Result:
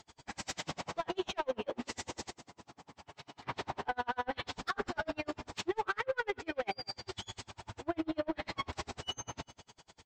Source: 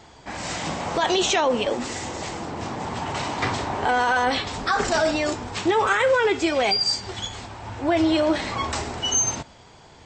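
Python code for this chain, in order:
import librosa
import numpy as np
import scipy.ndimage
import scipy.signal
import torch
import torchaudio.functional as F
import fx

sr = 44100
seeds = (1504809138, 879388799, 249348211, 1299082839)

y = fx.env_lowpass_down(x, sr, base_hz=2100.0, full_db=-19.0)
y = fx.high_shelf(y, sr, hz=2700.0, db=8.5)
y = 10.0 ** (-16.0 / 20.0) * np.tanh(y / 10.0 ** (-16.0 / 20.0))
y = fx.comb_fb(y, sr, f0_hz=140.0, decay_s=1.6, harmonics='all', damping=0.0, mix_pct=80, at=(2.29, 3.42), fade=0.02)
y = fx.echo_feedback(y, sr, ms=192, feedback_pct=41, wet_db=-15.5)
y = y * 10.0 ** (-38 * (0.5 - 0.5 * np.cos(2.0 * np.pi * 10.0 * np.arange(len(y)) / sr)) / 20.0)
y = y * librosa.db_to_amplitude(-7.0)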